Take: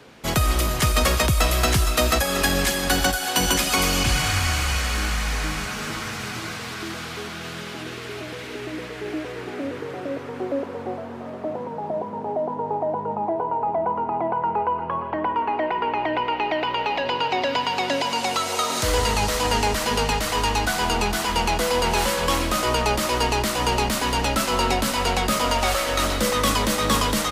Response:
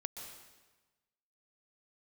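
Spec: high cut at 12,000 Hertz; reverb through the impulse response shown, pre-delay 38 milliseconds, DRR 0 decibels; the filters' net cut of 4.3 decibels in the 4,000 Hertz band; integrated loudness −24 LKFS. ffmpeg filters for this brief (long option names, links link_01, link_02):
-filter_complex "[0:a]lowpass=12000,equalizer=frequency=4000:width_type=o:gain=-6,asplit=2[link_01][link_02];[1:a]atrim=start_sample=2205,adelay=38[link_03];[link_02][link_03]afir=irnorm=-1:irlink=0,volume=1.5dB[link_04];[link_01][link_04]amix=inputs=2:normalize=0,volume=-3dB"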